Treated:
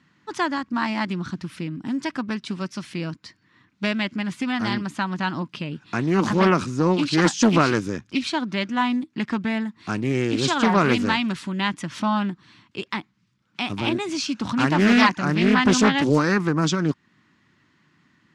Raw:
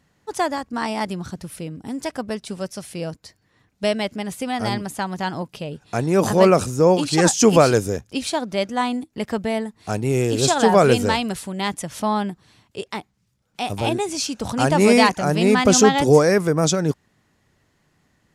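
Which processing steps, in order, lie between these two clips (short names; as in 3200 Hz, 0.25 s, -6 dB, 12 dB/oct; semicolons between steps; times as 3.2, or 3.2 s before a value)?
band shelf 580 Hz -12.5 dB 1.2 oct; in parallel at -1 dB: compressor, threshold -30 dBFS, peak gain reduction 16.5 dB; on the sum: BPF 160–4000 Hz; Doppler distortion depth 0.33 ms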